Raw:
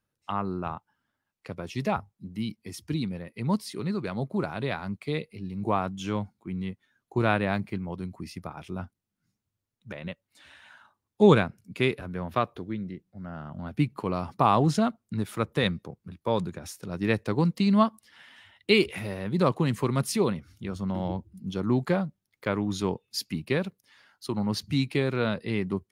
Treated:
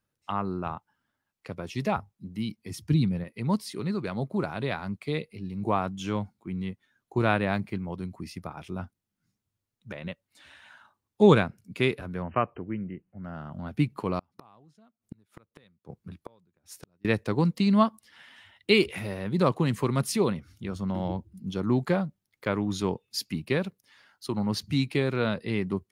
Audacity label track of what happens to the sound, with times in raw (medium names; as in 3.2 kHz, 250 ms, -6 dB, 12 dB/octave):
2.700000	3.240000	peaking EQ 130 Hz +10 dB 1.3 oct
12.220000	13.240000	brick-wall FIR low-pass 3.1 kHz
14.190000	17.050000	inverted gate shuts at -27 dBFS, range -35 dB